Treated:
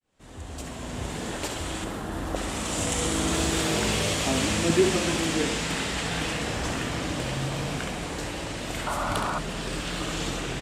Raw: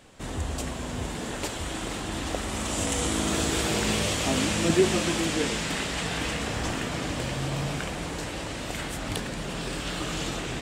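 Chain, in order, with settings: fade-in on the opening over 1.14 s; 1.84–2.36 s: high-order bell 4.3 kHz -9 dB 2.4 oct; on a send: flutter echo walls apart 11.6 m, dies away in 0.51 s; on the sum: resampled via 32 kHz; 8.86–9.39 s: painted sound noise 560–1500 Hz -30 dBFS

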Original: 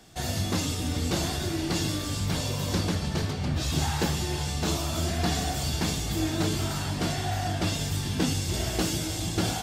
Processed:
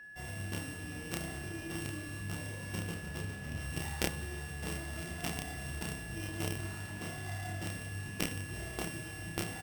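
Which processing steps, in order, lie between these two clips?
sorted samples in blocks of 16 samples; Schroeder reverb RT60 3 s, combs from 28 ms, DRR 8.5 dB; Chebyshev shaper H 3 -7 dB, 5 -20 dB, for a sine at -12 dBFS; doubling 30 ms -2.5 dB; whistle 1.7 kHz -49 dBFS; trim +1 dB

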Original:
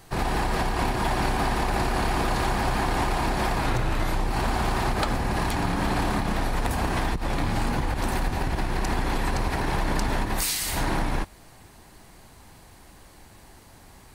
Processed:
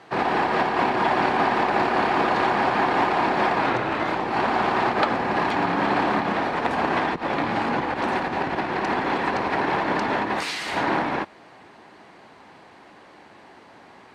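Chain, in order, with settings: band-pass 270–2800 Hz; trim +6.5 dB

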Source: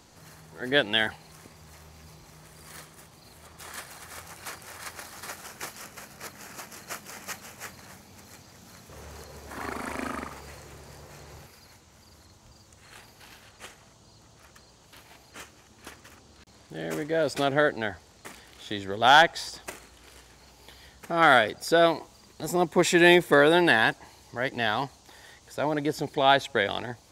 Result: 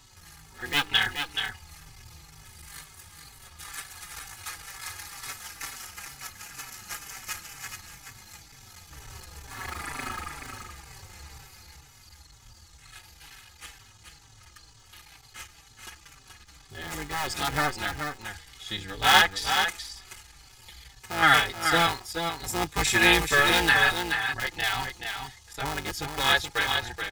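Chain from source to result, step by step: cycle switcher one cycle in 3, muted; peaking EQ 440 Hz -14.5 dB 1.7 oct; comb 2.4 ms, depth 47%; on a send: delay 428 ms -6.5 dB; on the sum: endless flanger 4.7 ms -2.1 Hz; trim +6.5 dB

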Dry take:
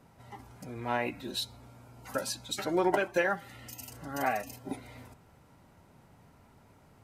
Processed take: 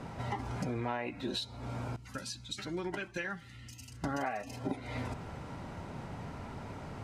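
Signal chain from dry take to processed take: 1.96–4.04 s: amplifier tone stack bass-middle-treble 6-0-2; compression 12:1, threshold -48 dBFS, peak gain reduction 23.5 dB; distance through air 73 m; trim +16 dB

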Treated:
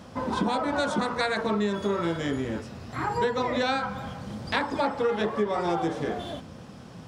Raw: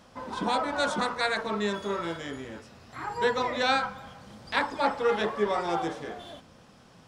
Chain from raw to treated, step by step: high-pass 60 Hz; bass shelf 440 Hz +9 dB; compression 6:1, threshold -28 dBFS, peak gain reduction 12 dB; trim +5 dB

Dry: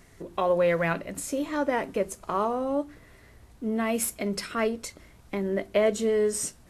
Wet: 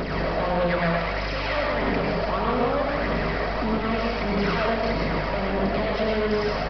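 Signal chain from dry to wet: spectral levelling over time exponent 0.4; 0.95–1.57 s: high-pass 1.3 kHz 6 dB/octave; peak limiter -18 dBFS, peak gain reduction 11 dB; hum 50 Hz, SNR 17 dB; phaser 1.6 Hz, delay 1.8 ms, feedback 59%; overload inside the chain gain 24.5 dB; reverberation RT60 0.65 s, pre-delay 88 ms, DRR -1.5 dB; resampled via 11.025 kHz; trim +1 dB

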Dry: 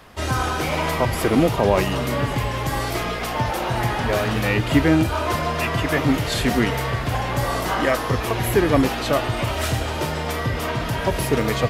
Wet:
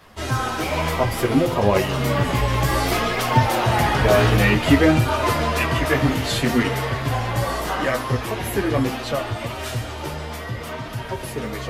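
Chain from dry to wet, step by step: Doppler pass-by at 3.98 s, 5 m/s, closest 6.6 m; chorus voices 2, 0.59 Hz, delay 12 ms, depth 4.4 ms; de-hum 86.12 Hz, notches 32; in parallel at 0 dB: gain riding within 4 dB 0.5 s; on the sum: trim +3 dB

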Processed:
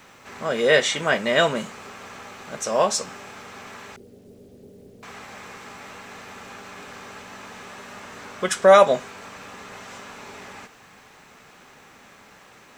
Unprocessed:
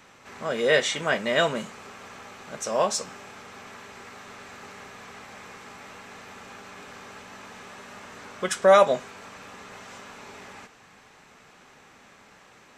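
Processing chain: 3.96–5.03 s: steep low-pass 510 Hz 36 dB/octave; bit crusher 11-bit; trim +3.5 dB

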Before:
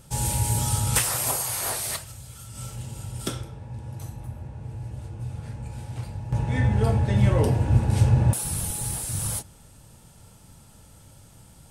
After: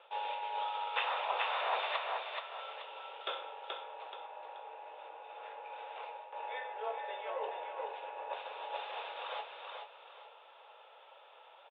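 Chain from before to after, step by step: rippled Chebyshev low-pass 3.7 kHz, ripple 6 dB; on a send: feedback delay 429 ms, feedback 33%, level -6 dB; on the sum: reverse; compression 8:1, threshold -33 dBFS, peak gain reduction 15 dB; reverse; steep high-pass 460 Hz 48 dB/octave; trim +4.5 dB

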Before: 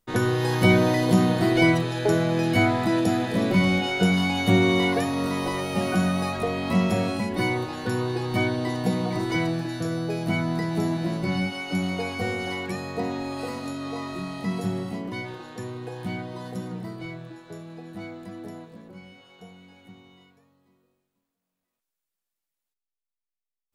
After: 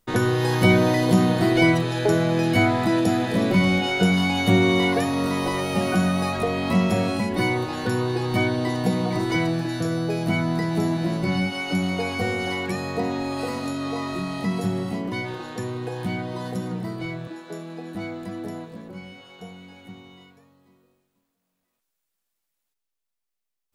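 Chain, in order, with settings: 17.27–17.95 s: steep high-pass 170 Hz; in parallel at 0 dB: compression, threshold -33 dBFS, peak gain reduction 18.5 dB

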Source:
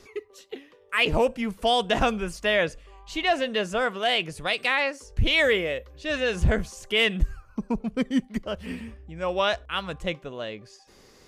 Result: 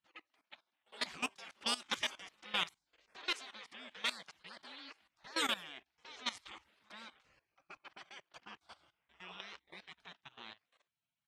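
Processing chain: high-pass 490 Hz 12 dB/octave; reverse echo 87 ms -23.5 dB; spectral gate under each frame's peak -20 dB weak; waveshaping leveller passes 1; level held to a coarse grid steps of 17 dB; level-controlled noise filter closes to 2.8 kHz, open at -33 dBFS; trim +1 dB

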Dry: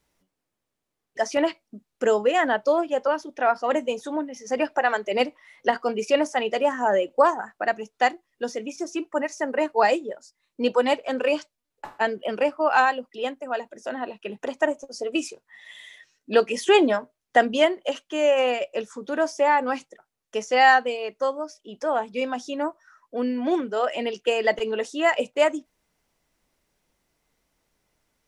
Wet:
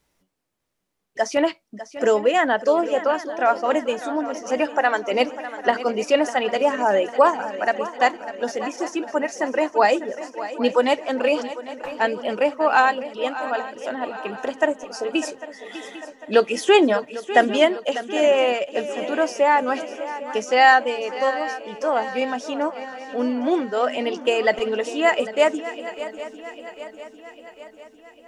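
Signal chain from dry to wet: shuffle delay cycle 799 ms, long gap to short 3:1, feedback 53%, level -14 dB; trim +2.5 dB

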